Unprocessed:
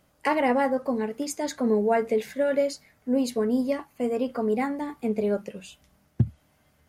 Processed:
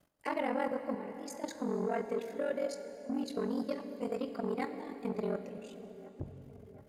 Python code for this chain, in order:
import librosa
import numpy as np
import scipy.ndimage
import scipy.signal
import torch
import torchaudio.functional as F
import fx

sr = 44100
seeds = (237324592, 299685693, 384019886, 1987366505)

y = fx.spec_erase(x, sr, start_s=2.89, length_s=0.34, low_hz=450.0, high_hz=1200.0)
y = fx.peak_eq(y, sr, hz=4200.0, db=8.0, octaves=0.67, at=(3.27, 5.28))
y = fx.level_steps(y, sr, step_db=13)
y = y * np.sin(2.0 * np.pi * 22.0 * np.arange(len(y)) / sr)
y = fx.echo_wet_lowpass(y, sr, ms=721, feedback_pct=62, hz=1400.0, wet_db=-19)
y = fx.rev_plate(y, sr, seeds[0], rt60_s=3.7, hf_ratio=0.8, predelay_ms=0, drr_db=8.5)
y = fx.transformer_sat(y, sr, knee_hz=580.0)
y = y * 10.0 ** (-3.5 / 20.0)